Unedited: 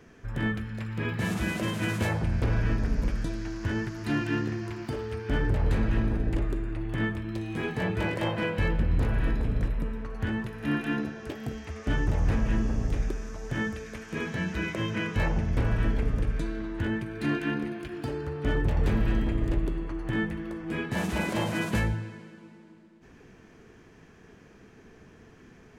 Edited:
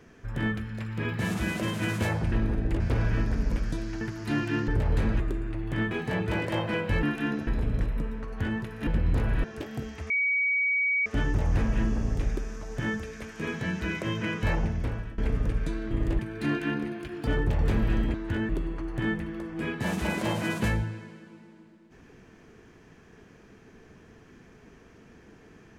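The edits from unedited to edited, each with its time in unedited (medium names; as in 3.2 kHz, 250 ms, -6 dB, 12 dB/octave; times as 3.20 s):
3.53–3.80 s: delete
4.47–5.42 s: delete
5.94–6.42 s: move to 2.32 s
7.13–7.60 s: delete
8.72–9.29 s: swap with 10.69–11.13 s
11.79 s: add tone 2.26 kHz -22.5 dBFS 0.96 s
15.36–15.91 s: fade out, to -22.5 dB
16.64–16.99 s: swap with 19.32–19.60 s
18.07–18.45 s: delete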